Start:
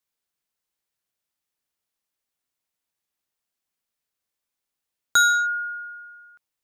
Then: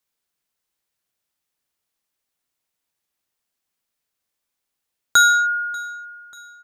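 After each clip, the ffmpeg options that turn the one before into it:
ffmpeg -i in.wav -af "aecho=1:1:589|1178|1767|2356:0.075|0.0405|0.0219|0.0118,volume=4dB" out.wav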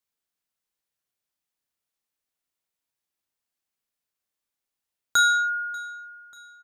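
ffmpeg -i in.wav -filter_complex "[0:a]asplit=2[link_01][link_02];[link_02]adelay=33,volume=-8.5dB[link_03];[link_01][link_03]amix=inputs=2:normalize=0,volume=-7dB" out.wav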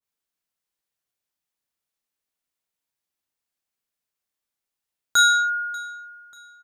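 ffmpeg -i in.wav -af "adynamicequalizer=threshold=0.0251:dfrequency=1600:dqfactor=0.7:tfrequency=1600:tqfactor=0.7:attack=5:release=100:ratio=0.375:range=3:mode=boostabove:tftype=highshelf" out.wav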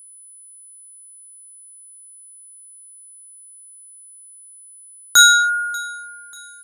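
ffmpeg -i in.wav -af "aeval=exprs='val(0)+0.002*sin(2*PI*10000*n/s)':channel_layout=same,crystalizer=i=1.5:c=0,volume=4dB" out.wav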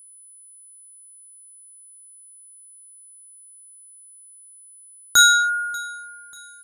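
ffmpeg -i in.wav -af "lowshelf=frequency=350:gain=10,volume=-3.5dB" out.wav

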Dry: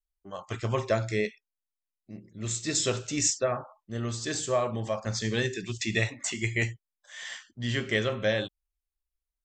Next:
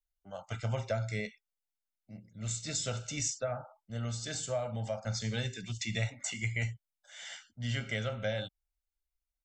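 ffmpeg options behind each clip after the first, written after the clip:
ffmpeg -i in.wav -filter_complex "[0:a]aecho=1:1:1.4:0.77,acrossover=split=170[link_01][link_02];[link_02]acompressor=threshold=-28dB:ratio=2[link_03];[link_01][link_03]amix=inputs=2:normalize=0,volume=-6dB" out.wav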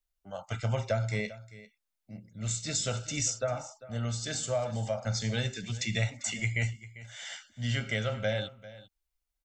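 ffmpeg -i in.wav -af "aecho=1:1:396:0.133,volume=3.5dB" out.wav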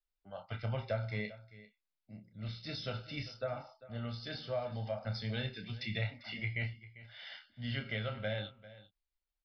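ffmpeg -i in.wav -filter_complex "[0:a]aresample=11025,aresample=44100,asplit=2[link_01][link_02];[link_02]adelay=29,volume=-8dB[link_03];[link_01][link_03]amix=inputs=2:normalize=0,volume=-6.5dB" out.wav

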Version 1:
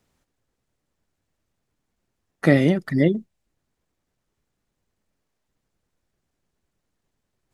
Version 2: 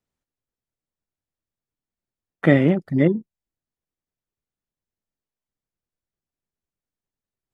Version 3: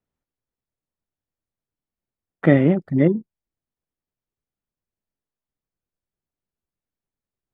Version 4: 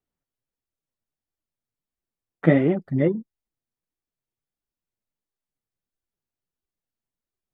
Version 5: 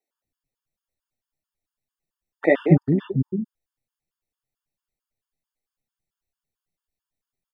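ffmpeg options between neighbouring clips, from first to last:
ffmpeg -i in.wav -af "afwtdn=0.0316,volume=1dB" out.wav
ffmpeg -i in.wav -af "highshelf=frequency=3000:gain=-11.5,volume=1dB" out.wav
ffmpeg -i in.wav -af "flanger=delay=2.5:depth=6.3:regen=37:speed=1.5:shape=sinusoidal,volume=1dB" out.wav
ffmpeg -i in.wav -filter_complex "[0:a]acrossover=split=330[link_01][link_02];[link_01]adelay=240[link_03];[link_03][link_02]amix=inputs=2:normalize=0,afftfilt=real='re*gt(sin(2*PI*4.5*pts/sr)*(1-2*mod(floor(b*sr/1024/900),2)),0)':imag='im*gt(sin(2*PI*4.5*pts/sr)*(1-2*mod(floor(b*sr/1024/900),2)),0)':win_size=1024:overlap=0.75,volume=5dB" out.wav

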